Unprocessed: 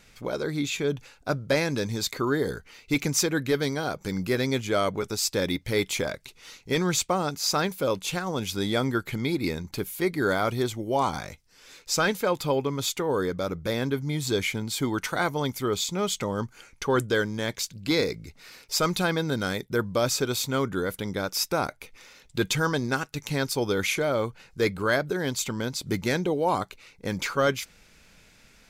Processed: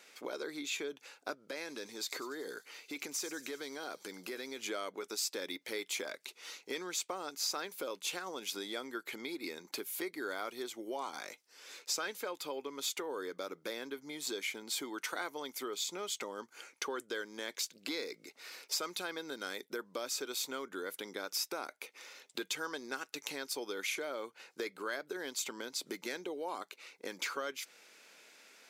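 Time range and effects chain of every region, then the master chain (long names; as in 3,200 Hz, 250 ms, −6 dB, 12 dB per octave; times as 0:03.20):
0:01.34–0:04.62: downward compressor 4 to 1, threshold −32 dBFS + delay with a high-pass on its return 95 ms, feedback 63%, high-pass 5,300 Hz, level −10 dB
whole clip: downward compressor, threshold −31 dBFS; high-pass filter 320 Hz 24 dB per octave; dynamic equaliser 620 Hz, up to −5 dB, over −45 dBFS, Q 0.79; level −1.5 dB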